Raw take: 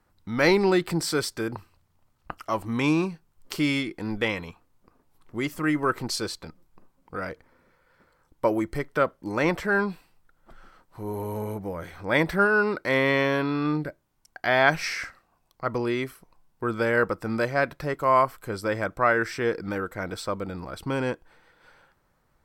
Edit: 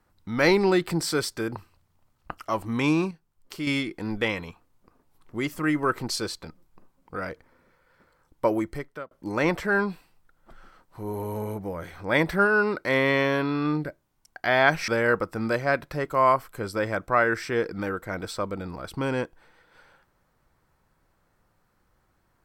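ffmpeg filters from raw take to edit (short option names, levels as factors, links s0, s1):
-filter_complex "[0:a]asplit=5[s0][s1][s2][s3][s4];[s0]atrim=end=3.112[s5];[s1]atrim=start=3.108:end=3.672,asetpts=PTS-STARTPTS,volume=0.447[s6];[s2]atrim=start=3.668:end=9.11,asetpts=PTS-STARTPTS,afade=t=out:st=4.902:d=0.54[s7];[s3]atrim=start=9.11:end=14.882,asetpts=PTS-STARTPTS,afade=t=in:d=0.004:c=hsin[s8];[s4]atrim=start=16.768[s9];[s5][s6]acrossfade=d=0.004:c1=hsin:c2=hsin[s10];[s7][s8]concat=n=2:v=0:a=1[s11];[s10][s11]acrossfade=d=0.004:c1=hsin:c2=hsin[s12];[s12][s9]acrossfade=d=0.004:c1=hsin:c2=hsin"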